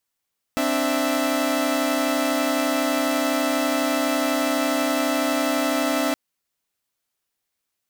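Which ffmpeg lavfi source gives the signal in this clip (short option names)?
-f lavfi -i "aevalsrc='0.0794*((2*mod(261.63*t,1)-1)+(2*mod(293.66*t,1)-1)+(2*mod(659.26*t,1)-1))':d=5.57:s=44100"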